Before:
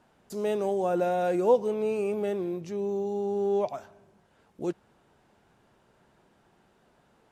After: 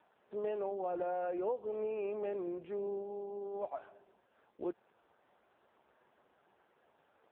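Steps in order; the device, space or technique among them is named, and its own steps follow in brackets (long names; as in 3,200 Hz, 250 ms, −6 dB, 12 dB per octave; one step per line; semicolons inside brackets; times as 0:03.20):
voicemail (band-pass filter 390–2,700 Hz; downward compressor 8 to 1, threshold −32 dBFS, peak gain reduction 14 dB; AMR narrowband 5.15 kbit/s 8,000 Hz)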